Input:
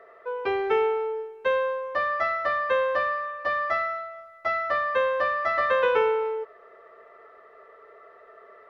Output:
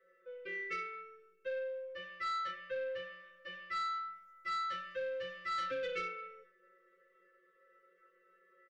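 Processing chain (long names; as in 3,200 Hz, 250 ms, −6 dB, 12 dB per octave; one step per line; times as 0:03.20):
0:03.73–0:06.05: bass and treble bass +5 dB, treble +8 dB
comb filter 5.9 ms, depth 35%
dynamic equaliser 2,600 Hz, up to +8 dB, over −41 dBFS, Q 0.79
stiff-string resonator 180 Hz, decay 0.47 s, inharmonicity 0.002
hollow resonant body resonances 510/2,800 Hz, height 16 dB, ringing for 75 ms
soft clipping −27 dBFS, distortion −14 dB
Butterworth band-reject 810 Hz, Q 0.75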